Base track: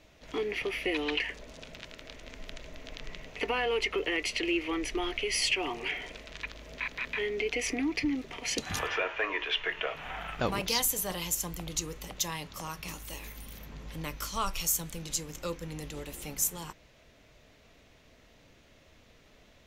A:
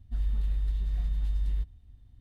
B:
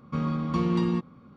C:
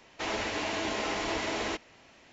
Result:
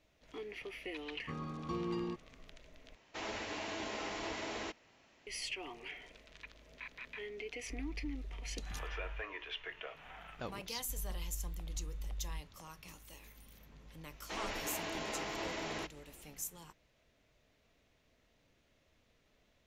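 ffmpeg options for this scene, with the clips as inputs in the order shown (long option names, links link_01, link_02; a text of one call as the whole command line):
ffmpeg -i bed.wav -i cue0.wav -i cue1.wav -i cue2.wav -filter_complex "[3:a]asplit=2[link_01][link_02];[1:a]asplit=2[link_03][link_04];[0:a]volume=-13dB[link_05];[2:a]aecho=1:1:2.5:0.6[link_06];[link_05]asplit=2[link_07][link_08];[link_07]atrim=end=2.954[link_09];[link_01]atrim=end=2.32,asetpts=PTS-STARTPTS,volume=-9dB[link_10];[link_08]atrim=start=5.266[link_11];[link_06]atrim=end=1.36,asetpts=PTS-STARTPTS,volume=-12dB,afade=type=in:duration=0.004:curve=hsin,afade=type=out:start_time=1.356:duration=0.004:curve=hsin,adelay=1150[link_12];[link_03]atrim=end=2.2,asetpts=PTS-STARTPTS,volume=-16.5dB,afade=type=in:duration=0.004:curve=hsin,afade=type=out:start_time=2.196:duration=0.004:curve=hsin,adelay=7580[link_13];[link_04]atrim=end=2.2,asetpts=PTS-STARTPTS,volume=-13.5dB,afade=type=in:duration=0.004:curve=hsin,afade=type=out:start_time=2.196:duration=0.004:curve=hsin,adelay=10770[link_14];[link_02]atrim=end=2.32,asetpts=PTS-STARTPTS,volume=-8.5dB,afade=type=in:duration=0.004:curve=hsin,afade=type=out:start_time=2.316:duration=0.004:curve=hsin,adelay=14100[link_15];[link_09][link_10]acrossfade=duration=0.004:curve1=hsin:curve2=hsin[link_16];[link_16][link_11]acrossfade=duration=0.004:curve1=hsin:curve2=hsin[link_17];[link_17][link_12][link_13][link_14][link_15]amix=inputs=5:normalize=0" out.wav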